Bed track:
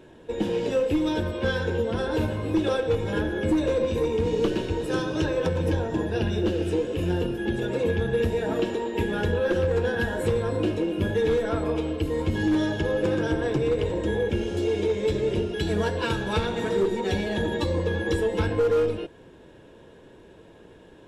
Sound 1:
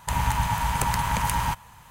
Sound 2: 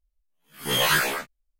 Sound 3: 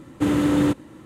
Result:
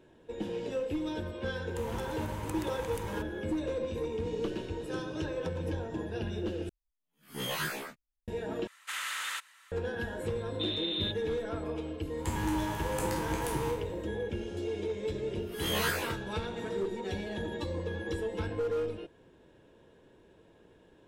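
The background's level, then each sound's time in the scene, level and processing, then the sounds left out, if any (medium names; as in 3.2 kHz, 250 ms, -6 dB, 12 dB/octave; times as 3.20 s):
bed track -10 dB
1.68 s: add 1 -17 dB
6.69 s: replace with 2 -14 dB + peaking EQ 210 Hz +7.5 dB 2.1 oct
8.67 s: replace with 3 + high-pass 1.4 kHz 24 dB/octave
10.39 s: add 3 -16.5 dB + frequency inversion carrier 3.9 kHz
12.17 s: add 1 -13.5 dB + spectral sustain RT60 0.58 s
14.93 s: add 2 -10.5 dB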